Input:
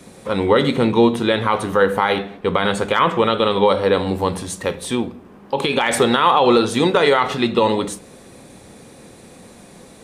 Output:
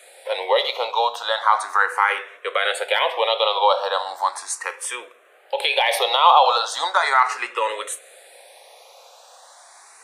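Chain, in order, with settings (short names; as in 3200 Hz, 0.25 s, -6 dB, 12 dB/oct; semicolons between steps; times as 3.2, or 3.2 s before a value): steep high-pass 570 Hz 36 dB/oct; endless phaser +0.37 Hz; gain +3.5 dB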